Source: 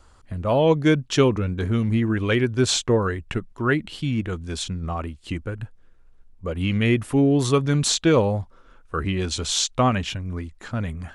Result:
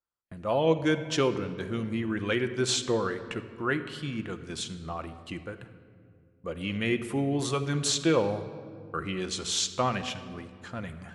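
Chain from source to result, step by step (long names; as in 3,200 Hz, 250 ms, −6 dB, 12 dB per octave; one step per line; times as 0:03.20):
high-pass filter 130 Hz 6 dB per octave
noise gate −44 dBFS, range −32 dB
low-shelf EQ 230 Hz −5 dB
rectangular room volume 3,800 cubic metres, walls mixed, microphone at 0.82 metres
level −5.5 dB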